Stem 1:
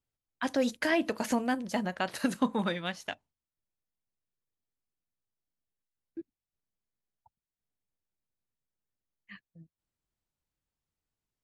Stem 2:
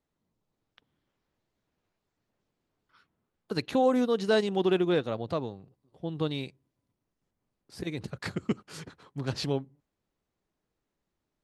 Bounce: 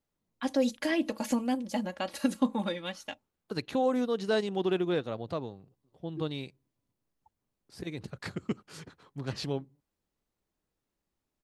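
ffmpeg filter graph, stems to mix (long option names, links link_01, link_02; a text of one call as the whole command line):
ffmpeg -i stem1.wav -i stem2.wav -filter_complex "[0:a]equalizer=frequency=1600:width_type=o:width=0.77:gain=-6,aecho=1:1:3.6:0.71,volume=-2.5dB[link_01];[1:a]volume=-3.5dB[link_02];[link_01][link_02]amix=inputs=2:normalize=0" out.wav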